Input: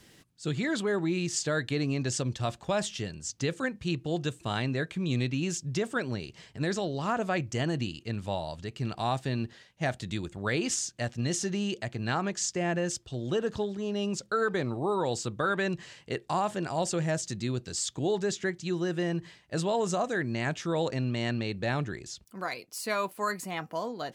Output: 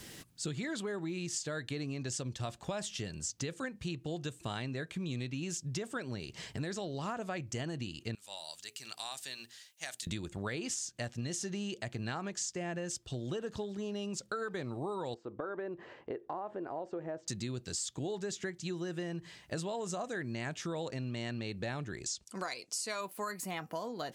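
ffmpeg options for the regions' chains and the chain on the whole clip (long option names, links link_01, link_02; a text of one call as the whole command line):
ffmpeg -i in.wav -filter_complex "[0:a]asettb=1/sr,asplit=3[link_01][link_02][link_03];[link_01]atrim=end=8.154[link_04];[link_02]atrim=start=8.15:end=10.07,asetpts=PTS-STARTPTS,afade=type=in:duration=0.004:curve=qsin,afade=type=out:start_time=1.916:duration=0.004:curve=qsin,aderivative,bandreject=frequency=60:width_type=h:width=6,bandreject=frequency=120:width_type=h:width=6,bandreject=frequency=180:width_type=h:width=6,bandreject=frequency=240:width_type=h:width=6,bandreject=frequency=300:width_type=h:width=6,bandreject=frequency=360:width_type=h:width=6,bandreject=frequency=420:width_type=h:width=6[link_05];[link_03]atrim=start=10.066[link_06];[link_04][link_05]acrossfade=duration=0.004:curve1=hsin:curve2=qsin[link_07];[link_07][link_06]acrossfade=duration=0.004:curve1=qsin:curve2=hsin,asettb=1/sr,asplit=3[link_08][link_09][link_10];[link_08]atrim=end=15.144[link_11];[link_09]atrim=start=15.14:end=17.28,asetpts=PTS-STARTPTS,afade=type=in:duration=0.004:curve=qsin,afade=type=out:start_time=2.136:duration=0.004:curve=qsin,lowshelf=frequency=230:width_type=q:width=1.5:gain=-10.5,acompressor=threshold=-43dB:ratio=1.5:attack=3.2:release=140:knee=1:detection=peak,lowpass=1100[link_12];[link_10]atrim=start=17.276[link_13];[link_11][link_12]acrossfade=duration=0.004:curve1=hsin:curve2=qsin[link_14];[link_14][link_13]acrossfade=duration=0.004:curve1=qsin:curve2=hsin,asettb=1/sr,asplit=3[link_15][link_16][link_17];[link_15]atrim=end=22.044[link_18];[link_16]atrim=start=22.04:end=23.01,asetpts=PTS-STARTPTS,afade=type=in:duration=0.004:curve=qsin,afade=type=out:start_time=0.966:duration=0.004:curve=qsin,lowpass=frequency=8600:width=0.5412,lowpass=frequency=8600:width=1.3066,bass=frequency=250:gain=-5,treble=frequency=4000:gain=9[link_19];[link_17]atrim=start=23.006[link_20];[link_18][link_19]acrossfade=duration=0.004:curve1=hsin:curve2=qsin[link_21];[link_21][link_20]acrossfade=duration=0.004:curve1=qsin:curve2=hsin,highshelf=frequency=6800:gain=6.5,acompressor=threshold=-43dB:ratio=5,volume=6dB" out.wav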